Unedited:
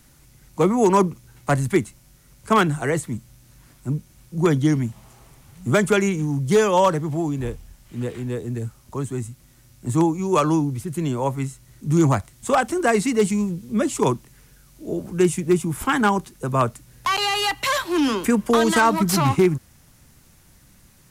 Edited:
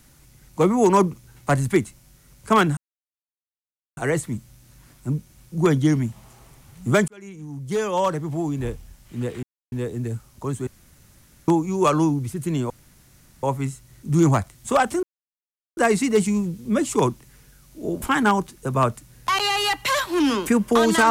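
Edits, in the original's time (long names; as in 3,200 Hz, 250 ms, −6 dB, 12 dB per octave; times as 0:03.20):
0:02.77: splice in silence 1.20 s
0:05.88–0:07.49: fade in
0:08.23: splice in silence 0.29 s
0:09.18–0:09.99: fill with room tone
0:11.21: splice in room tone 0.73 s
0:12.81: splice in silence 0.74 s
0:15.06–0:15.80: remove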